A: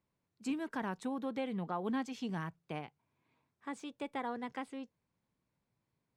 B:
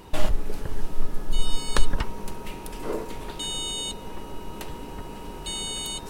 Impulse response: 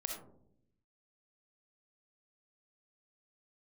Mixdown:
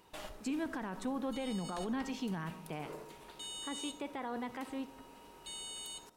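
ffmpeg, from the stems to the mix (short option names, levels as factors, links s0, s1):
-filter_complex "[0:a]volume=1.12,asplit=2[s0][s1];[s1]volume=0.335[s2];[1:a]highpass=f=48:p=1,lowshelf=f=330:g=-11.5,volume=0.15,asplit=2[s3][s4];[s4]volume=0.596[s5];[2:a]atrim=start_sample=2205[s6];[s2][s5]amix=inputs=2:normalize=0[s7];[s7][s6]afir=irnorm=-1:irlink=0[s8];[s0][s3][s8]amix=inputs=3:normalize=0,alimiter=level_in=1.88:limit=0.0631:level=0:latency=1:release=28,volume=0.531"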